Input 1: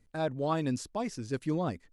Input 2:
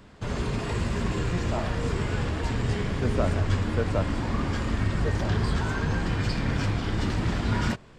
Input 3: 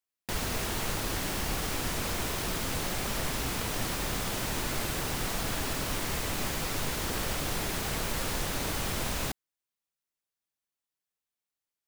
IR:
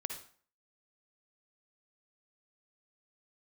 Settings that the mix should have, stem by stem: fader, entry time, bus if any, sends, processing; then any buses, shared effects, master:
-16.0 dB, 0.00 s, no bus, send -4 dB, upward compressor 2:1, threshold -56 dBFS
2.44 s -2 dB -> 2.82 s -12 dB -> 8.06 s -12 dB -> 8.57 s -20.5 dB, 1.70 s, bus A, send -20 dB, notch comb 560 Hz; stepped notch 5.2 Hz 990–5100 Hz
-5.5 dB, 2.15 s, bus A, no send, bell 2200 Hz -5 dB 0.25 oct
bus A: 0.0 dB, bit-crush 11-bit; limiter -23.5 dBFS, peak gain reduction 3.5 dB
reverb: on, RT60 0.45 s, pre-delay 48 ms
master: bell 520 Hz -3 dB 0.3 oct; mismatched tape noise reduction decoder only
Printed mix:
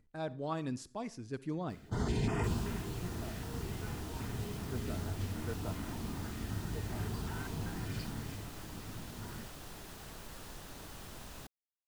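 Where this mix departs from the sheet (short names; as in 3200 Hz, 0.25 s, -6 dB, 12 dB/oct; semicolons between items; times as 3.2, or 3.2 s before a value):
stem 1 -16.0 dB -> -8.5 dB; stem 3 -5.5 dB -> -15.5 dB; reverb return -7.5 dB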